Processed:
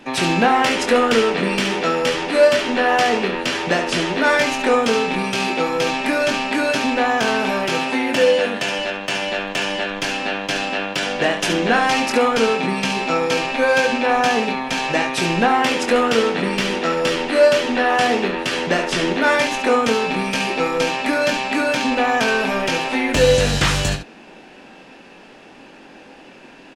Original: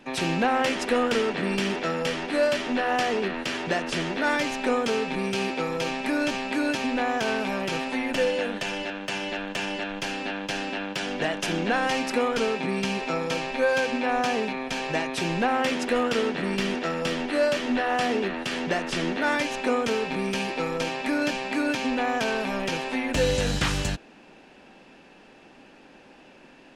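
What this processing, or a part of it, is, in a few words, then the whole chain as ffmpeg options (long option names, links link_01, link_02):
slapback doubling: -filter_complex "[0:a]asettb=1/sr,asplit=3[link_01][link_02][link_03];[link_01]atrim=end=7.684[link_04];[link_02]atrim=start=7.68:end=8.79,asetpts=PTS-STARTPTS,afade=type=in:duration=0.004:curve=qsin,afade=type=out:start_time=1.106:duration=0.004:curve=qsin,highpass=62[link_05];[link_03]atrim=start=8.786[link_06];[link_04][link_05]acrossfade=duration=0.004:curve1=hsin:curve2=qsin[link_07];[link_07][link_06]acrossfade=duration=0.004:curve1=qsin:curve2=hsin,asplit=3[link_08][link_09][link_10];[link_09]adelay=22,volume=-7dB[link_11];[link_10]adelay=70,volume=-9dB[link_12];[link_08][link_11][link_12]amix=inputs=3:normalize=0,lowshelf=frequency=140:gain=-4,volume=7.5dB"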